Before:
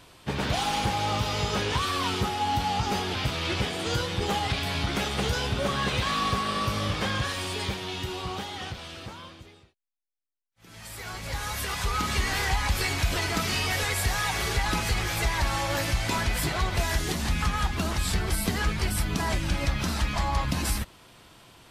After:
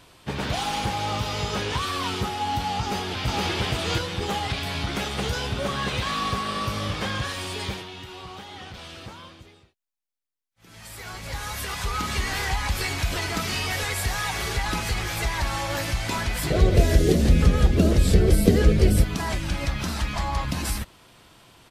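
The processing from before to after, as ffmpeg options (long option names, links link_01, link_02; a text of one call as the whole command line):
ffmpeg -i in.wav -filter_complex "[0:a]asplit=2[link_01][link_02];[link_02]afade=type=in:start_time=2.8:duration=0.01,afade=type=out:start_time=3.51:duration=0.01,aecho=0:1:470|940|1410:1|0.2|0.04[link_03];[link_01][link_03]amix=inputs=2:normalize=0,asettb=1/sr,asplit=3[link_04][link_05][link_06];[link_04]atrim=end=7.814[link_07];[link_05]atrim=start=7.81:end=8.74,asetpts=PTS-STARTPTS,afade=type=in:duration=0.004:curve=qsin,afade=type=out:start_time=0.926:duration=0.004:curve=qsin,acrossover=split=700|4100[link_08][link_09][link_10];[link_08]acompressor=threshold=-41dB:ratio=4[link_11];[link_09]acompressor=threshold=-41dB:ratio=4[link_12];[link_10]acompressor=threshold=-54dB:ratio=4[link_13];[link_11][link_12][link_13]amix=inputs=3:normalize=0[link_14];[link_06]atrim=start=8.736[link_15];[link_07][link_14]acrossfade=duration=0.004:curve1=hsin:curve2=qsin[link_16];[link_16][link_15]acrossfade=duration=0.004:curve1=qsin:curve2=hsin,asettb=1/sr,asplit=3[link_17][link_18][link_19];[link_17]atrim=end=16.504[link_20];[link_18]atrim=start=16.5:end=19.04,asetpts=PTS-STARTPTS,afade=type=in:duration=0.004:curve=qsin,afade=type=out:start_time=2.536:duration=0.004:curve=qsin,lowshelf=frequency=680:width_type=q:width=3:gain=10[link_21];[link_19]atrim=start=19.036[link_22];[link_20][link_21]acrossfade=duration=0.004:curve1=hsin:curve2=qsin[link_23];[link_23][link_22]acrossfade=duration=0.004:curve1=qsin:curve2=hsin" out.wav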